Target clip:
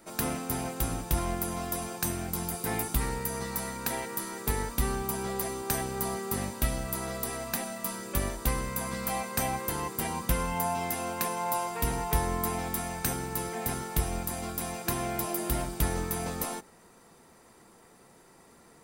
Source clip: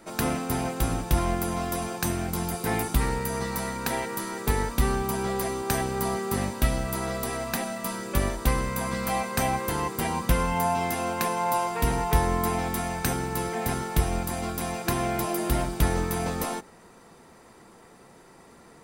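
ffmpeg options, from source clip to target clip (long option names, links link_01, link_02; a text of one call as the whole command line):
ffmpeg -i in.wav -af "highshelf=frequency=7400:gain=8.5,volume=-5.5dB" out.wav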